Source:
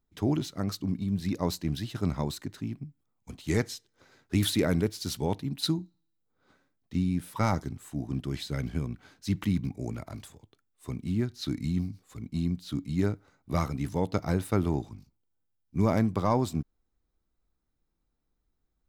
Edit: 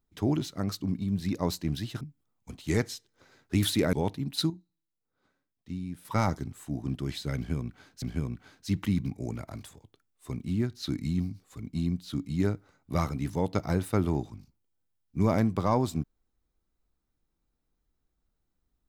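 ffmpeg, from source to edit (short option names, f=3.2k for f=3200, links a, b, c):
-filter_complex "[0:a]asplit=6[a][b][c][d][e][f];[a]atrim=end=2.012[g];[b]atrim=start=2.808:end=4.732[h];[c]atrim=start=5.178:end=5.752[i];[d]atrim=start=5.748:end=7.302,asetpts=PTS-STARTPTS,volume=-8.5dB[j];[e]atrim=start=7.298:end=9.272[k];[f]atrim=start=8.608[l];[g][h]acrossfade=d=0.004:c1=hsin:c2=hsin[m];[m][i]acrossfade=d=0.004:c1=hsin:c2=hsin[n];[n][j]acrossfade=d=0.004:c1=hsin:c2=hsin[o];[o][k]acrossfade=d=0.004:c1=hsin:c2=hsin[p];[p][l]acrossfade=d=0.004:c1=hsin:c2=hsin"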